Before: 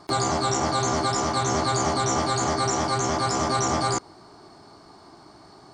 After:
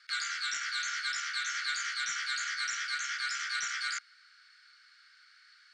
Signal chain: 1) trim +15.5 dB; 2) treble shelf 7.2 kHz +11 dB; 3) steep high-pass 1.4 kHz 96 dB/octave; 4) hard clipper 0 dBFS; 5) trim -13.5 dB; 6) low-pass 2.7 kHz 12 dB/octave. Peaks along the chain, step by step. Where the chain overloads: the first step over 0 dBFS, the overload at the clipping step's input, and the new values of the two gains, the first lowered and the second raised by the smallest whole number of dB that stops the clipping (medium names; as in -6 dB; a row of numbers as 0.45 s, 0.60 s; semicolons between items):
+3.5 dBFS, +5.5 dBFS, +4.5 dBFS, 0.0 dBFS, -13.5 dBFS, -20.5 dBFS; step 1, 4.5 dB; step 1 +10.5 dB, step 5 -8.5 dB